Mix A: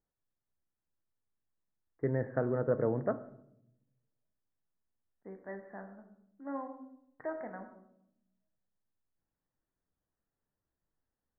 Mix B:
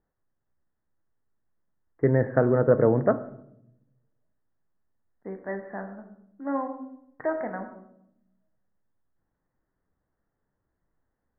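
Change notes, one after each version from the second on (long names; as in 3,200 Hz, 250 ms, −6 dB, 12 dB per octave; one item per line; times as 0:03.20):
first voice +10.5 dB
second voice +10.5 dB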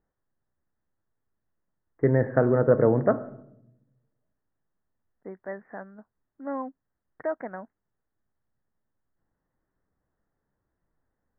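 second voice: send off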